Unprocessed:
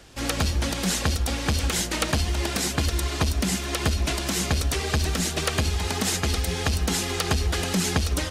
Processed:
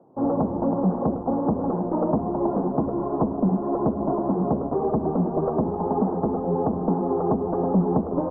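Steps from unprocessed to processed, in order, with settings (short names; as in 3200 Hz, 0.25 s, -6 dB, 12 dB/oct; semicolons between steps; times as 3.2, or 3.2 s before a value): HPF 160 Hz 24 dB/oct; in parallel at -7 dB: fuzz box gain 32 dB, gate -39 dBFS; on the sum: steep low-pass 1000 Hz 48 dB/oct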